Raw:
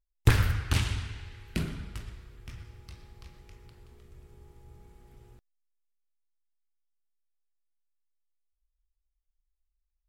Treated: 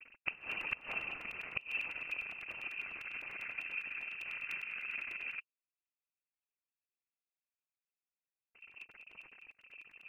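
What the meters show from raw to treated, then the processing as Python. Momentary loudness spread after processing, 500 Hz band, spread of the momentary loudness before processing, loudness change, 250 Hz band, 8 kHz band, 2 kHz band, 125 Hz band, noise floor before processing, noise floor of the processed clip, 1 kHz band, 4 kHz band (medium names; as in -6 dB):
15 LU, -12.5 dB, 23 LU, -9.5 dB, -21.0 dB, under -20 dB, +3.0 dB, under -30 dB, -81 dBFS, under -85 dBFS, -8.0 dB, -9.0 dB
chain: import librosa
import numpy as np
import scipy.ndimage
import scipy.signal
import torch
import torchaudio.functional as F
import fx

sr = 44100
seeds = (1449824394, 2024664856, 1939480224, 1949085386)

y = x + 0.5 * 10.0 ** (-33.5 / 20.0) * np.sign(x)
y = fx.vowel_filter(y, sr, vowel='u')
y = fx.peak_eq(y, sr, hz=460.0, db=7.0, octaves=2.4)
y = fx.noise_vocoder(y, sr, seeds[0], bands=8)
y = fx.gate_flip(y, sr, shuts_db=-28.0, range_db=-24)
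y = fx.vibrato(y, sr, rate_hz=0.75, depth_cents=24.0)
y = fx.freq_invert(y, sr, carrier_hz=2900)
y = fx.buffer_crackle(y, sr, first_s=0.41, period_s=0.1, block=128, kind='repeat')
y = F.gain(torch.from_numpy(y), 8.0).numpy()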